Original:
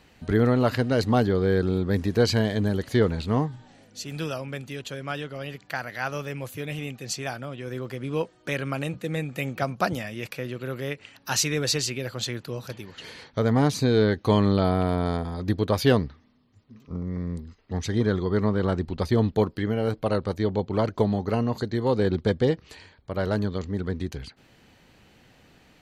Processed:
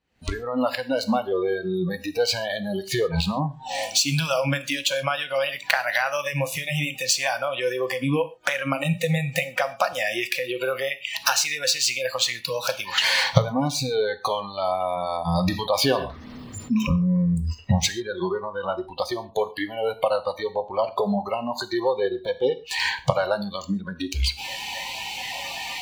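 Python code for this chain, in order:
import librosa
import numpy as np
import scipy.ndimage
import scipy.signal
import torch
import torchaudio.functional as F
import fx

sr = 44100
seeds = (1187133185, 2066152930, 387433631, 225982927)

y = scipy.ndimage.median_filter(x, 3, mode='constant')
y = fx.recorder_agc(y, sr, target_db=-11.0, rise_db_per_s=79.0, max_gain_db=30)
y = fx.noise_reduce_blind(y, sr, reduce_db=25)
y = fx.spec_box(y, sr, start_s=10.89, length_s=0.36, low_hz=210.0, high_hz=1800.0, gain_db=-6)
y = fx.rev_gated(y, sr, seeds[0], gate_ms=160, shape='falling', drr_db=11.0)
y = fx.env_flatten(y, sr, amount_pct=50, at=(15.35, 17.35))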